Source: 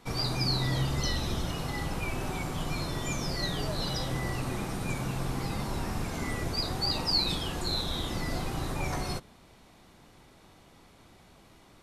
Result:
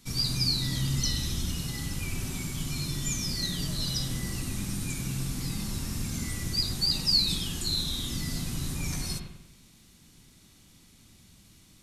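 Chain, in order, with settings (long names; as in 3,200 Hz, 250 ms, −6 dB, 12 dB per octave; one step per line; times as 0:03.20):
drawn EQ curve 230 Hz 0 dB, 440 Hz −12 dB, 750 Hz −16 dB, 6,600 Hz +8 dB
on a send: bucket-brigade delay 96 ms, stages 2,048, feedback 47%, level −5.5 dB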